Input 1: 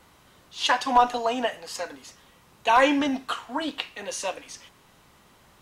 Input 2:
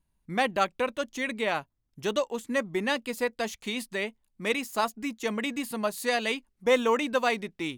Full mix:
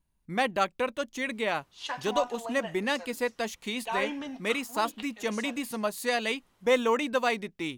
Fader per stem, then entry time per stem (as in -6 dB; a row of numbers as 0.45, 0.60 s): -13.0, -1.0 dB; 1.20, 0.00 s